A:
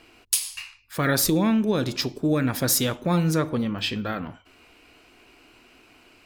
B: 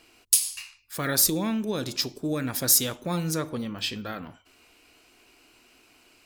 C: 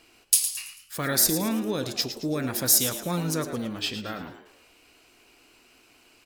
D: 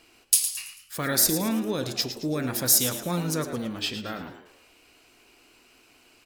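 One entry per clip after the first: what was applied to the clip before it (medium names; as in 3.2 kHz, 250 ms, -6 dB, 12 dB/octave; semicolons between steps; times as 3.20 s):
tone controls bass -2 dB, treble +9 dB; trim -5.5 dB
frequency-shifting echo 110 ms, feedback 40%, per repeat +94 Hz, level -10.5 dB
reverberation, pre-delay 32 ms, DRR 15.5 dB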